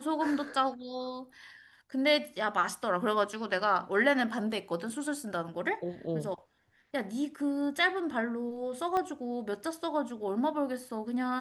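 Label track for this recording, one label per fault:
8.970000	8.970000	click −20 dBFS

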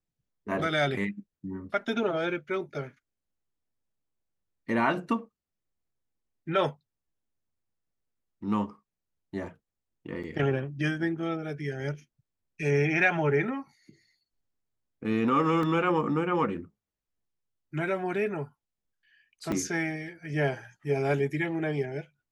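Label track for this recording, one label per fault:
10.230000	10.240000	drop-out 6 ms
15.630000	15.630000	drop-out 2.4 ms
19.520000	19.520000	drop-out 2.1 ms

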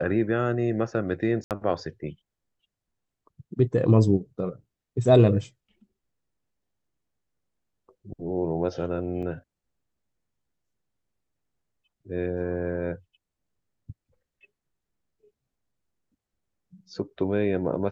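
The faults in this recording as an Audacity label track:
1.440000	1.510000	drop-out 68 ms
9.220000	9.230000	drop-out 6.7 ms

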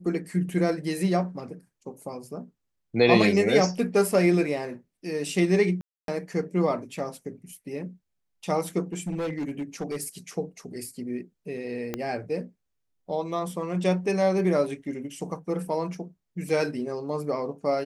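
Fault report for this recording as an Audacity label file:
5.810000	6.080000	drop-out 272 ms
8.920000	10.080000	clipping −26 dBFS
11.940000	11.940000	click −15 dBFS
16.490000	16.490000	drop-out 2.4 ms

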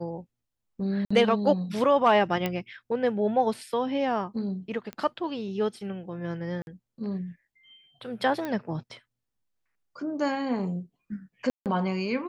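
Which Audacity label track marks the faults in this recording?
1.050000	1.100000	drop-out 55 ms
2.460000	2.460000	click −14 dBFS
4.930000	4.930000	click −23 dBFS
6.620000	6.670000	drop-out 51 ms
8.450000	8.450000	click −20 dBFS
11.500000	11.660000	drop-out 158 ms

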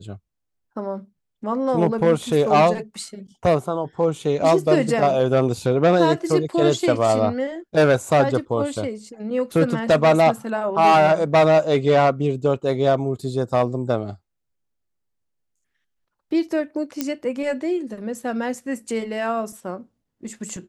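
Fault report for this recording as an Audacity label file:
17.010000	17.010000	click −8 dBFS

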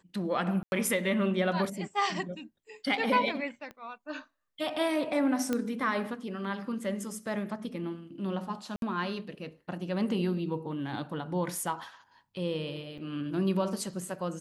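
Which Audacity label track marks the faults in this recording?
0.630000	0.720000	drop-out 91 ms
3.710000	3.710000	click −30 dBFS
5.530000	5.530000	click −16 dBFS
8.760000	8.820000	drop-out 62 ms
12.980000	12.980000	drop-out 4.9 ms

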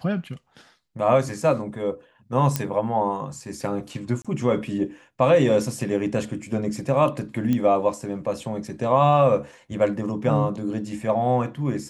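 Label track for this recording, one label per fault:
2.560000	2.560000	click −7 dBFS
4.220000	4.250000	drop-out 26 ms
7.530000	7.530000	click −13 dBFS

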